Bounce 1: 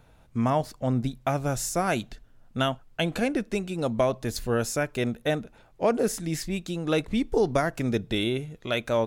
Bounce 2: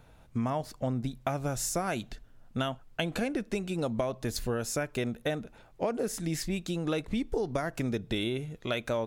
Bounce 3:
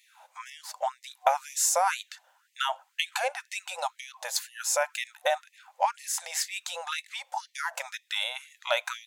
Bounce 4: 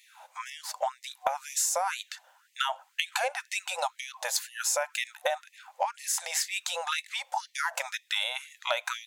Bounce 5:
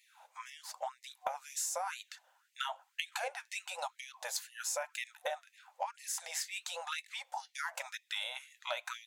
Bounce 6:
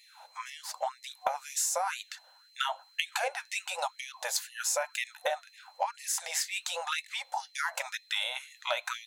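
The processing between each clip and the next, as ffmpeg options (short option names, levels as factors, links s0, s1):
-af "acompressor=threshold=0.0447:ratio=6"
-af "superequalizer=9b=2.51:15b=1.41,afftfilt=real='re*gte(b*sr/1024,480*pow(1800/480,0.5+0.5*sin(2*PI*2*pts/sr)))':imag='im*gte(b*sr/1024,480*pow(1800/480,0.5+0.5*sin(2*PI*2*pts/sr)))':win_size=1024:overlap=0.75,volume=2.11"
-af "acompressor=threshold=0.0398:ratio=10,volume=1.5"
-af "flanger=delay=0.4:depth=8.2:regen=-61:speed=1:shape=sinusoidal,volume=0.596"
-af "aeval=exprs='val(0)+0.000501*sin(2*PI*4100*n/s)':c=same,volume=2.11"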